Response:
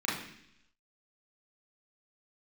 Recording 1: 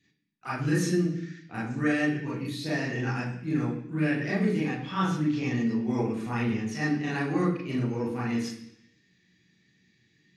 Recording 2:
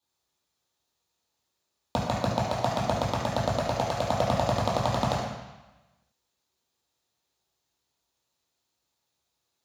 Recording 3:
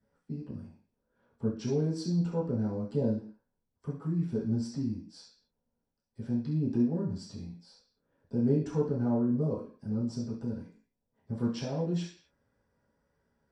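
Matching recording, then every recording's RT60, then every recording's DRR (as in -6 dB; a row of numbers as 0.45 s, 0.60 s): 1; 0.70 s, 1.1 s, 0.45 s; -7.0 dB, -5.5 dB, -10.5 dB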